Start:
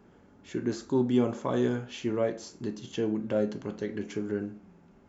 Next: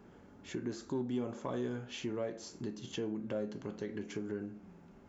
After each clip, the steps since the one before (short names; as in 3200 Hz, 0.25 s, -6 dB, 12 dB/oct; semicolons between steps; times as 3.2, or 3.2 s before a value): in parallel at -10.5 dB: soft clip -27.5 dBFS, distortion -9 dB; on the sum: compressor 2:1, threshold -39 dBFS, peak gain reduction 11.5 dB; gain -2 dB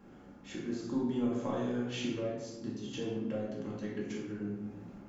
random-step tremolo 3.4 Hz; shoebox room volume 430 m³, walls mixed, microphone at 2.2 m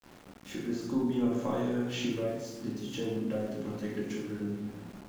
sample gate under -50.5 dBFS; gain +3 dB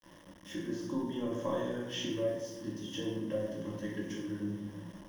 ripple EQ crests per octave 1.2, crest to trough 12 dB; gain -4 dB